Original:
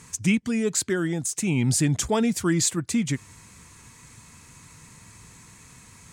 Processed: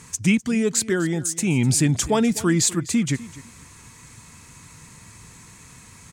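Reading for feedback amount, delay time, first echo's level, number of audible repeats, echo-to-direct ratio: 20%, 0.252 s, -18.0 dB, 2, -18.0 dB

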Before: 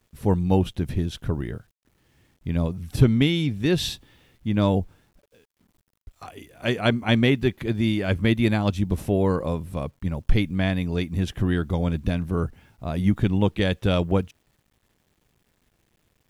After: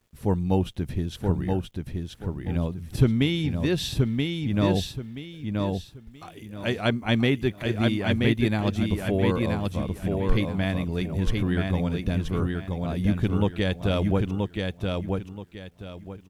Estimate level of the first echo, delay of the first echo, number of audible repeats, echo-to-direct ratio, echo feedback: -3.5 dB, 0.978 s, 3, -3.0 dB, 27%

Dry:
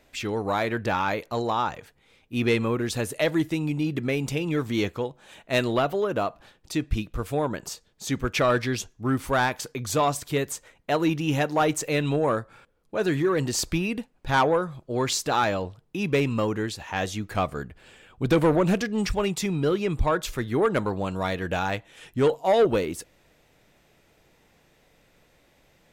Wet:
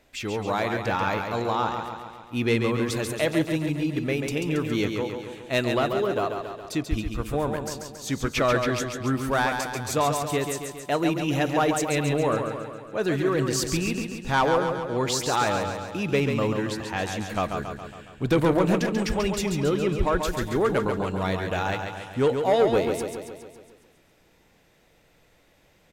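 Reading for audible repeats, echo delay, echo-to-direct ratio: 7, 0.138 s, -4.0 dB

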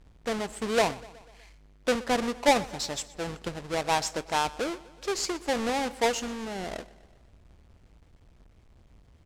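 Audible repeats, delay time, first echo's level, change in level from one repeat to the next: 4, 0.123 s, -20.0 dB, -4.5 dB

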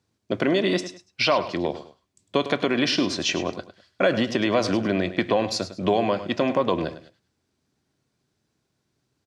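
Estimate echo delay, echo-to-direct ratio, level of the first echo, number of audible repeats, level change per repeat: 0.103 s, -12.5 dB, -13.0 dB, 2, -10.5 dB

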